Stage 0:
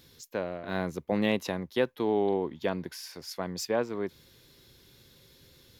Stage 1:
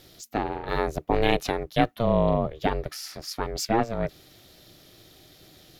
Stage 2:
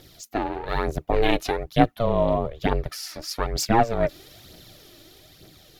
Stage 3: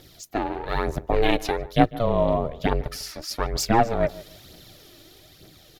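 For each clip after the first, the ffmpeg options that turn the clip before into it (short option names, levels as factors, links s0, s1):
-af "aeval=exprs='val(0)*sin(2*PI*230*n/s)':c=same,volume=2.51"
-af "aphaser=in_gain=1:out_gain=1:delay=3.6:decay=0.48:speed=1.1:type=triangular,dynaudnorm=f=280:g=9:m=2"
-filter_complex "[0:a]asplit=2[s0][s1];[s1]adelay=148,lowpass=f=1500:p=1,volume=0.133,asplit=2[s2][s3];[s3]adelay=148,lowpass=f=1500:p=1,volume=0.27[s4];[s0][s2][s4]amix=inputs=3:normalize=0"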